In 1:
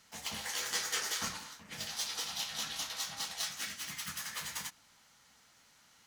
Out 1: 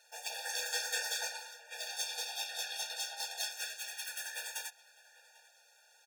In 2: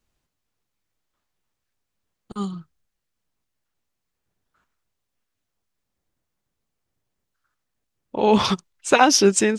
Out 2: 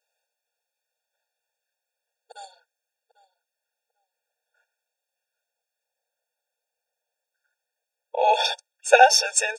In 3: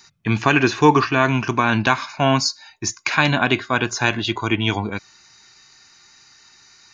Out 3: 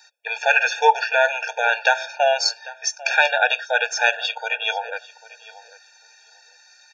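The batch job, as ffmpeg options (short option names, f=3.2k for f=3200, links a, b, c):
-filter_complex "[0:a]asplit=2[a][b];[b]adelay=796,lowpass=f=3k:p=1,volume=-18.5dB,asplit=2[c][d];[d]adelay=796,lowpass=f=3k:p=1,volume=0.17[e];[a][c][e]amix=inputs=3:normalize=0,afftfilt=real='re*eq(mod(floor(b*sr/1024/470),2),1)':imag='im*eq(mod(floor(b*sr/1024/470),2),1)':win_size=1024:overlap=0.75,volume=3dB"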